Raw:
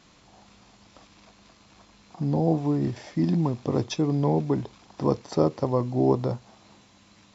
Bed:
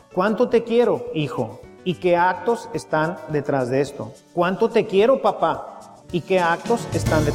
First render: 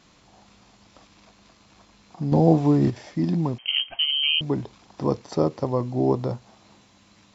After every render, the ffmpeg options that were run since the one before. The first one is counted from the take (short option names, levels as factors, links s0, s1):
-filter_complex "[0:a]asettb=1/sr,asplit=3[s0][s1][s2];[s0]atrim=end=3.584[s3];[s1]atrim=start=3.58:end=4.41,asetpts=PTS-STARTPTS,afade=t=in:d=0.004:c=qsin,afade=t=out:st=0.826:d=0.004:c=qsin,lowpass=f=2800:t=q:w=0.5098,lowpass=f=2800:t=q:w=0.6013,lowpass=f=2800:t=q:w=0.9,lowpass=f=2800:t=q:w=2.563,afreqshift=-3300[s4];[s2]atrim=start=4.406[s5];[s3][s4]acrossfade=d=0.004:c1=hsin:c2=qsin[s6];[s6][s5]acrossfade=d=0.004:c1=qsin:c2=hsin,asplit=3[s7][s8][s9];[s7]atrim=end=2.322[s10];[s8]atrim=start=2.318:end=2.902,asetpts=PTS-STARTPTS,volume=2[s11];[s9]atrim=start=2.898[s12];[s10][s11]acrossfade=d=0.004:c1=hsin:c2=hsin[s13];[s13][s12]acrossfade=d=0.004:c1=hsin:c2=hsin"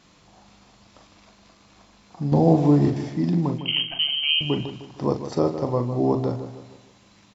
-filter_complex "[0:a]asplit=2[s0][s1];[s1]adelay=41,volume=0.376[s2];[s0][s2]amix=inputs=2:normalize=0,asplit=2[s3][s4];[s4]adelay=154,lowpass=f=3900:p=1,volume=0.299,asplit=2[s5][s6];[s6]adelay=154,lowpass=f=3900:p=1,volume=0.43,asplit=2[s7][s8];[s8]adelay=154,lowpass=f=3900:p=1,volume=0.43,asplit=2[s9][s10];[s10]adelay=154,lowpass=f=3900:p=1,volume=0.43,asplit=2[s11][s12];[s12]adelay=154,lowpass=f=3900:p=1,volume=0.43[s13];[s3][s5][s7][s9][s11][s13]amix=inputs=6:normalize=0"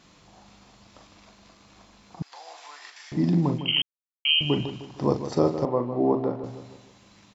-filter_complex "[0:a]asettb=1/sr,asplit=3[s0][s1][s2];[s0]atrim=end=2.224[s3];[s1]atrim=start=2.22:end=3.12,asetpts=PTS-STARTPTS,afade=t=in:d=0.004:c=qsin,afade=t=out:st=0.896:d=0.004:c=qsin,highpass=f=1300:w=0.5412,highpass=f=1300:w=1.3066[s4];[s2]atrim=start=3.116[s5];[s3][s4]acrossfade=d=0.004:c1=hsin:c2=qsin[s6];[s6][s5]acrossfade=d=0.004:c1=qsin:c2=hsin,asettb=1/sr,asplit=3[s7][s8][s9];[s7]atrim=end=5.654[s10];[s8]atrim=start=5.65:end=6.44,asetpts=PTS-STARTPTS,afade=t=in:d=0.004:c=qsin,afade=t=out:st=0.786:d=0.004:c=qsin,highpass=210,lowpass=2100[s11];[s9]atrim=start=6.436[s12];[s10][s11]acrossfade=d=0.004:c1=hsin:c2=qsin[s13];[s13][s12]acrossfade=d=0.004:c1=qsin:c2=hsin,asplit=3[s14][s15][s16];[s14]atrim=end=3.82,asetpts=PTS-STARTPTS,afade=t=out:st=3.816:d=0.004:c=hsin[s17];[s15]atrim=start=3.82:end=4.25,asetpts=PTS-STARTPTS,volume=0[s18];[s16]atrim=start=4.25,asetpts=PTS-STARTPTS,afade=t=in:d=0.004:c=hsin[s19];[s17][s18][s19]concat=n=3:v=0:a=1"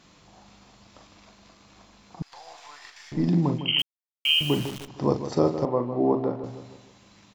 -filter_complex "[0:a]asettb=1/sr,asplit=3[s0][s1][s2];[s0]atrim=end=2.214[s3];[s1]atrim=start=2.21:end=3.28,asetpts=PTS-STARTPTS,afade=t=in:d=0.004:c=qsin,afade=t=out:st=1.066:d=0.004:c=qsin,aeval=exprs='if(lt(val(0),0),0.708*val(0),val(0))':c=same[s4];[s2]atrim=start=3.276[s5];[s3][s4]acrossfade=d=0.004:c1=hsin:c2=qsin[s6];[s6][s5]acrossfade=d=0.004:c1=qsin:c2=hsin,asettb=1/sr,asplit=3[s7][s8][s9];[s7]atrim=end=3.794[s10];[s8]atrim=start=3.79:end=4.88,asetpts=PTS-STARTPTS,afade=t=in:d=0.004:c=qsin,afade=t=out:st=1.086:d=0.004:c=qsin,acrusher=bits=7:dc=4:mix=0:aa=0.000001[s11];[s9]atrim=start=4.876[s12];[s10][s11]acrossfade=d=0.004:c1=hsin:c2=qsin[s13];[s13][s12]acrossfade=d=0.004:c1=qsin:c2=hsin"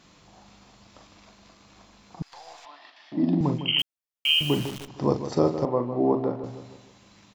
-filter_complex "[0:a]asettb=1/sr,asplit=3[s0][s1][s2];[s0]atrim=end=2.654[s3];[s1]atrim=start=2.65:end=3.41,asetpts=PTS-STARTPTS,afade=t=in:d=0.004:c=qsin,afade=t=out:st=0.756:d=0.004:c=qsin,highpass=f=150:w=0.5412,highpass=f=150:w=1.3066,equalizer=f=150:t=q:w=4:g=-9,equalizer=f=270:t=q:w=4:g=7,equalizer=f=450:t=q:w=4:g=-8,equalizer=f=640:t=q:w=4:g=8,equalizer=f=1500:t=q:w=4:g=-7,equalizer=f=2200:t=q:w=4:g=-8,lowpass=f=3900:w=0.5412,lowpass=f=3900:w=1.3066[s4];[s2]atrim=start=3.406[s5];[s3][s4]acrossfade=d=0.004:c1=hsin:c2=qsin[s6];[s6][s5]acrossfade=d=0.004:c1=qsin:c2=hsin"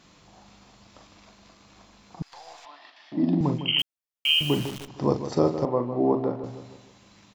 -af anull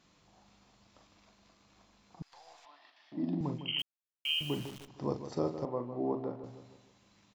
-af "volume=0.282"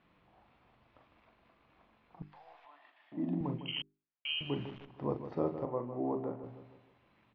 -af "lowpass=f=2800:w=0.5412,lowpass=f=2800:w=1.3066,bandreject=f=50:t=h:w=6,bandreject=f=100:t=h:w=6,bandreject=f=150:t=h:w=6,bandreject=f=200:t=h:w=6,bandreject=f=250:t=h:w=6,bandreject=f=300:t=h:w=6,bandreject=f=350:t=h:w=6,bandreject=f=400:t=h:w=6"